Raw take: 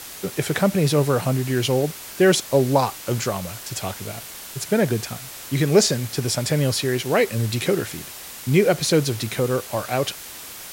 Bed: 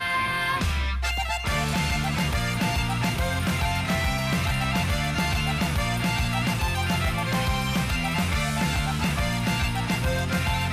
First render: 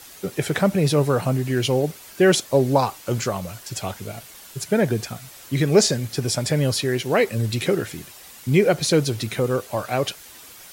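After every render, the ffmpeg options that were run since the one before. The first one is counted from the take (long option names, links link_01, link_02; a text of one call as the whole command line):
ffmpeg -i in.wav -af "afftdn=noise_reduction=8:noise_floor=-38" out.wav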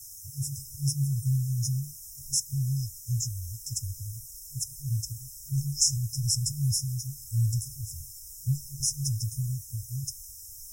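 ffmpeg -i in.wav -af "afftfilt=real='re*(1-between(b*sr/4096,140,5100))':imag='im*(1-between(b*sr/4096,140,5100))':win_size=4096:overlap=0.75,asubboost=boost=5:cutoff=60" out.wav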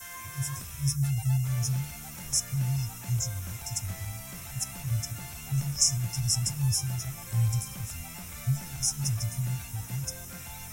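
ffmpeg -i in.wav -i bed.wav -filter_complex "[1:a]volume=-19.5dB[link_01];[0:a][link_01]amix=inputs=2:normalize=0" out.wav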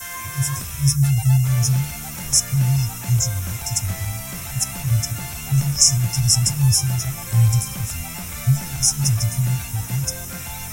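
ffmpeg -i in.wav -af "volume=10.5dB,alimiter=limit=-1dB:level=0:latency=1" out.wav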